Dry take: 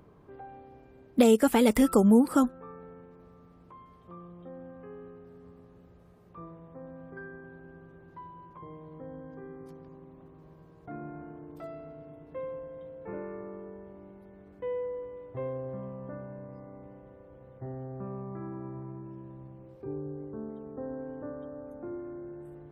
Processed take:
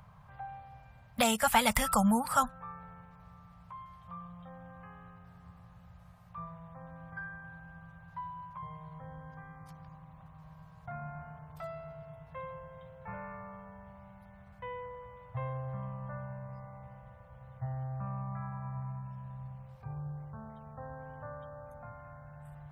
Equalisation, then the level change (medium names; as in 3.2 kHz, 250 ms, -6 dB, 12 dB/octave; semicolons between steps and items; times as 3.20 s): Chebyshev band-stop 140–830 Hz, order 2; +5.0 dB